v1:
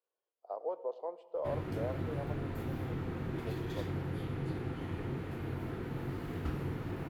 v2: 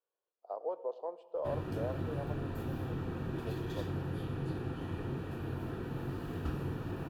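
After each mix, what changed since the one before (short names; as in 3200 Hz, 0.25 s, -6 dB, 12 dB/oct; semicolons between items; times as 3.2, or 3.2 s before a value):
master: add Butterworth band-stop 2100 Hz, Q 5.6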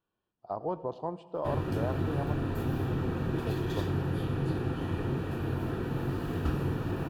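speech: remove ladder high-pass 440 Hz, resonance 60%; background +6.5 dB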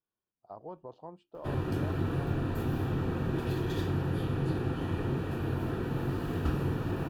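speech -9.5 dB; reverb: off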